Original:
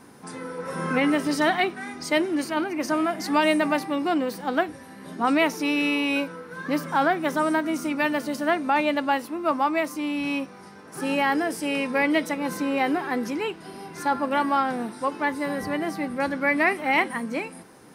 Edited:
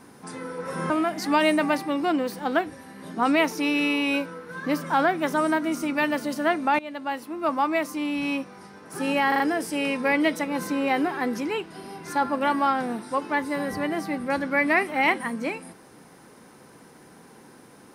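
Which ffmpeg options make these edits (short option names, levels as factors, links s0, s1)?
-filter_complex "[0:a]asplit=6[s0][s1][s2][s3][s4][s5];[s0]atrim=end=0.902[s6];[s1]atrim=start=2.918:end=8.81,asetpts=PTS-STARTPTS,afade=t=out:st=5.888:d=0.004:c=hsin:silence=0.125893[s7];[s2]atrim=start=8.81:end=11.342,asetpts=PTS-STARTPTS,afade=t=in:d=1.11:c=qsin:silence=0.125893[s8];[s3]atrim=start=11.298:end=11.342[s9];[s4]atrim=start=11.298:end=11.342[s10];[s5]atrim=start=11.298[s11];[s7][s8]concat=n=2:v=0:a=1[s12];[s6][s12]acrossfade=d=0.004:c1=hsin:c2=hsin[s13];[s13][s9]acrossfade=d=0.004:c1=hsin:c2=hsin[s14];[s14][s10]acrossfade=d=0.004:c1=hsin:c2=hsin[s15];[s15][s11]acrossfade=d=0.004:c1=hsin:c2=hsin"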